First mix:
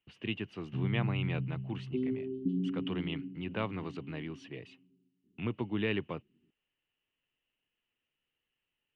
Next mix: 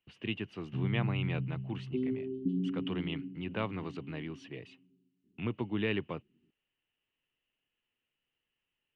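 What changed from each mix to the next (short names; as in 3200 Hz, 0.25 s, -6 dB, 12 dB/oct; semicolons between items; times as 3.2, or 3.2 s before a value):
none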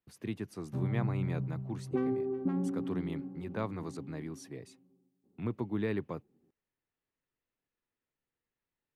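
background: remove inverse Chebyshev band-stop 600–2300 Hz, stop band 40 dB; master: remove synth low-pass 2900 Hz, resonance Q 11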